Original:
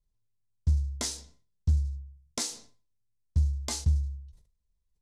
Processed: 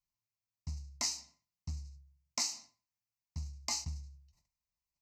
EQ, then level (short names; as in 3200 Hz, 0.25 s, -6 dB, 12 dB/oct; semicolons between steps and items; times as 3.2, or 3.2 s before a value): HPF 540 Hz 6 dB/oct; fixed phaser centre 2300 Hz, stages 8; +1.0 dB